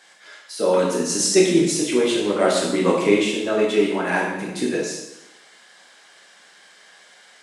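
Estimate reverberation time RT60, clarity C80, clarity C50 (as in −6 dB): 0.90 s, 5.0 dB, 2.0 dB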